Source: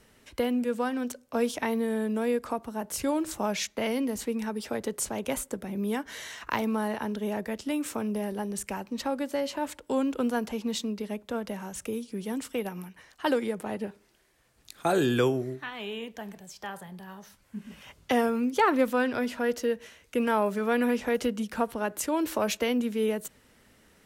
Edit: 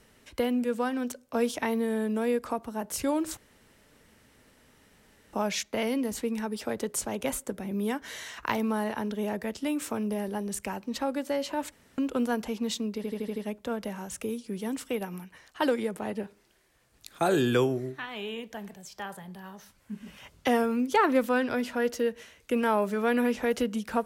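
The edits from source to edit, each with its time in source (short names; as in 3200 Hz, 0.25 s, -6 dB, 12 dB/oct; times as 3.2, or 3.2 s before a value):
3.37 insert room tone 1.96 s
9.76–10.02 room tone
11 stutter 0.08 s, 6 plays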